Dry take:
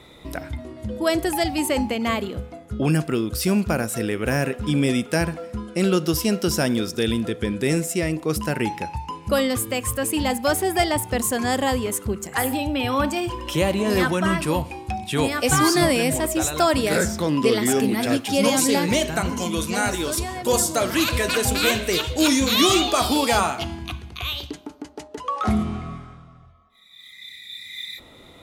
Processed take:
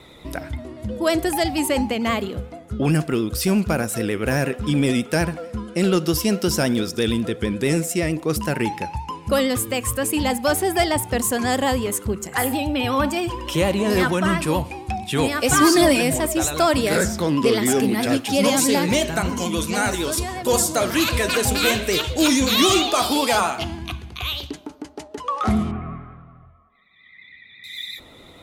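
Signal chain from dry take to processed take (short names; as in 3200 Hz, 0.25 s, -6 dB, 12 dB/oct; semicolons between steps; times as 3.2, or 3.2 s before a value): vibrato 11 Hz 51 cents; 15.53–16.01 comb 3.2 ms; 22.79–23.57 HPF 210 Hz 6 dB/oct; in parallel at -8 dB: hard clip -15.5 dBFS, distortion -14 dB; 25.71–27.64 on the sum: LPF 2300 Hz 24 dB/oct; gain -1.5 dB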